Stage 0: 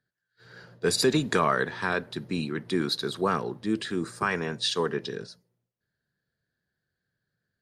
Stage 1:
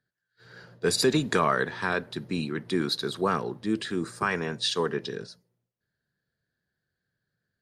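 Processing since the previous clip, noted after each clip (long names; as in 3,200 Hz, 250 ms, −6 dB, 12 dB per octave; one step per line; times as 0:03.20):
no processing that can be heard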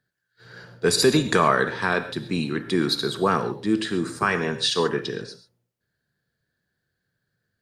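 reverb whose tail is shaped and stops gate 160 ms flat, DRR 9.5 dB
level +4.5 dB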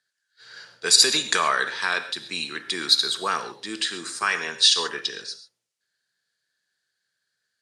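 meter weighting curve ITU-R 468
level −3.5 dB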